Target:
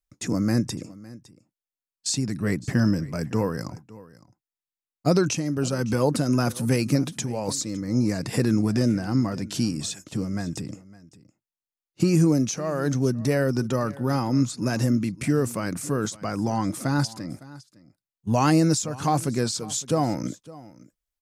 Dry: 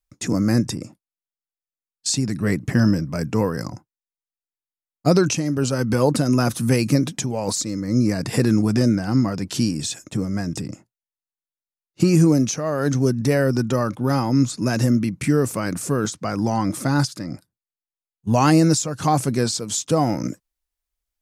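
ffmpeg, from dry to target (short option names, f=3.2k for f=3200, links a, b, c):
-af "aecho=1:1:559:0.1,volume=-4dB"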